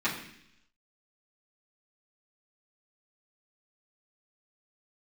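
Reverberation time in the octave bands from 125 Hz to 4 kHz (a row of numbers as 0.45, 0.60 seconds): 0.90, 0.90, 0.75, 0.70, 0.90, 0.95 seconds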